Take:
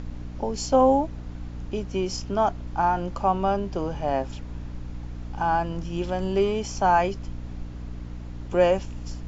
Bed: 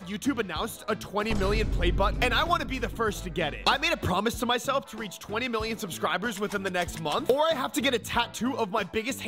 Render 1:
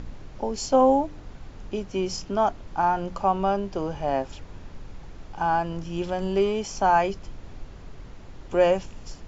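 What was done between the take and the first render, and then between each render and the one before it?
de-hum 60 Hz, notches 5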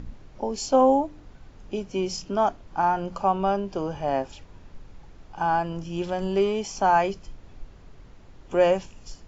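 noise print and reduce 6 dB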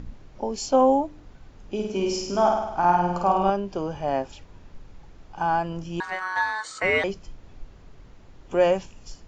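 1.74–3.50 s: flutter echo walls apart 8.8 m, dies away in 0.9 s; 6.00–7.04 s: ring modulator 1.3 kHz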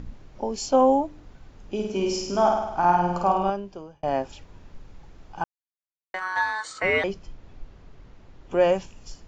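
3.26–4.03 s: fade out; 5.44–6.14 s: mute; 6.73–8.69 s: distance through air 56 m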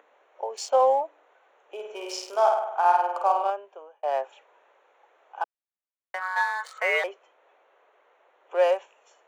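local Wiener filter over 9 samples; steep high-pass 480 Hz 36 dB/octave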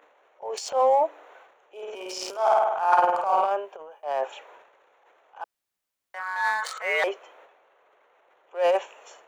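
transient shaper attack -9 dB, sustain +11 dB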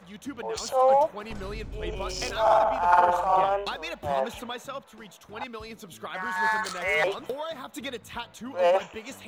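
add bed -10 dB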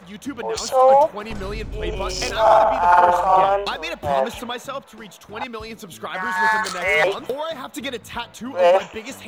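trim +7 dB; peak limiter -2 dBFS, peak gain reduction 2.5 dB

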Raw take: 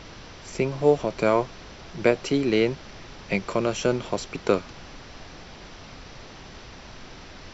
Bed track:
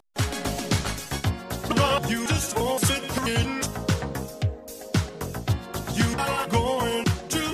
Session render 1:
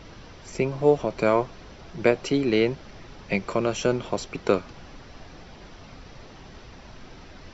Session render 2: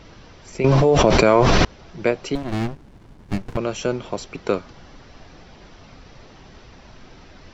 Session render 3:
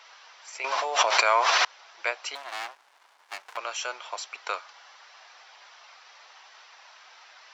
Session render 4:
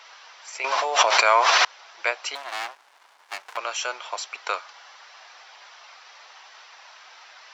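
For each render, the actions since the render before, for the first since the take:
noise reduction 6 dB, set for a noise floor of -44 dBFS
0.64–1.65 s: level flattener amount 100%; 2.35–3.57 s: sliding maximum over 65 samples; 4.58–4.99 s: band-stop 2.5 kHz, Q 14
high-pass 830 Hz 24 dB/octave
trim +4 dB; peak limiter -3 dBFS, peak gain reduction 1.5 dB

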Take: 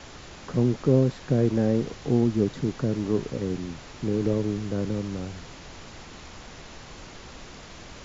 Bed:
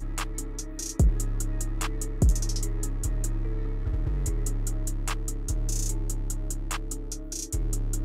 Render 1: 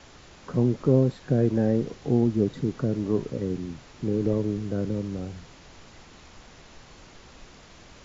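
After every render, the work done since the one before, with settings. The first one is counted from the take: noise print and reduce 6 dB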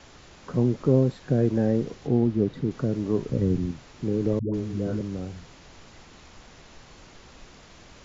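2.07–2.71 s: distance through air 110 m; 3.29–3.71 s: bass shelf 210 Hz +11.5 dB; 4.39–5.01 s: phase dispersion highs, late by 147 ms, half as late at 420 Hz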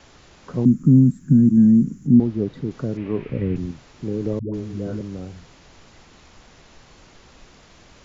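0.65–2.20 s: FFT filter 100 Hz 0 dB, 160 Hz +13 dB, 250 Hz +13 dB, 420 Hz -15 dB, 610 Hz -26 dB, 890 Hz -21 dB, 1.4 kHz -10 dB, 4.1 kHz -21 dB, 8.1 kHz +10 dB; 2.97–3.56 s: resonant low-pass 2.4 kHz, resonance Q 3.7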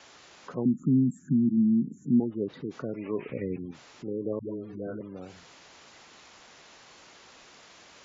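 high-pass 640 Hz 6 dB/octave; spectral gate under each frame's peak -25 dB strong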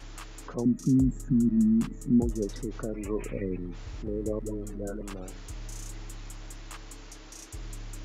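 add bed -12 dB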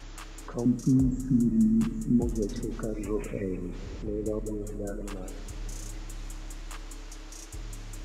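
echo that smears into a reverb 463 ms, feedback 48%, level -15.5 dB; simulated room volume 950 m³, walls mixed, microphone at 0.37 m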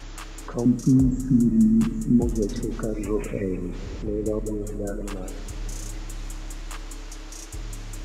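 trim +5 dB

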